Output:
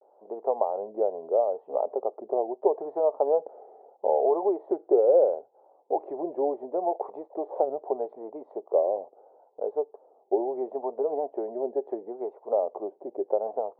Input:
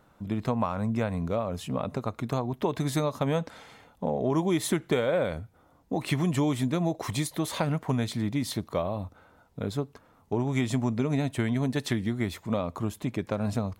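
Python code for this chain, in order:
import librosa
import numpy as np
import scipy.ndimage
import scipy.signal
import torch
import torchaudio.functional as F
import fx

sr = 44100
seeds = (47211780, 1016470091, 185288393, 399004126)

y = scipy.signal.sosfilt(scipy.signal.cheby1(3, 1.0, [390.0, 820.0], 'bandpass', fs=sr, output='sos'), x)
y = fx.vibrato(y, sr, rate_hz=0.75, depth_cents=95.0)
y = y * librosa.db_to_amplitude(7.5)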